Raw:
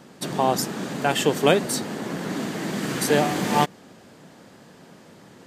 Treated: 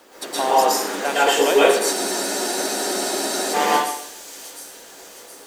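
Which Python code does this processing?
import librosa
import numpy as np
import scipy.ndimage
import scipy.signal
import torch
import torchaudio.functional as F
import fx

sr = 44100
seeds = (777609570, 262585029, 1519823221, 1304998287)

p1 = scipy.signal.sosfilt(scipy.signal.butter(4, 330.0, 'highpass', fs=sr, output='sos'), x)
p2 = fx.hum_notches(p1, sr, base_hz=60, count=7)
p3 = fx.rider(p2, sr, range_db=10, speed_s=0.5)
p4 = p2 + (p3 * librosa.db_to_amplitude(-1.0))
p5 = fx.quant_dither(p4, sr, seeds[0], bits=8, dither='none')
p6 = fx.echo_wet_highpass(p5, sr, ms=715, feedback_pct=50, hz=5500.0, wet_db=-6.5)
p7 = fx.rev_plate(p6, sr, seeds[1], rt60_s=0.7, hf_ratio=0.85, predelay_ms=105, drr_db=-8.0)
p8 = fx.spec_freeze(p7, sr, seeds[2], at_s=1.94, hold_s=1.6)
y = p8 * librosa.db_to_amplitude(-7.5)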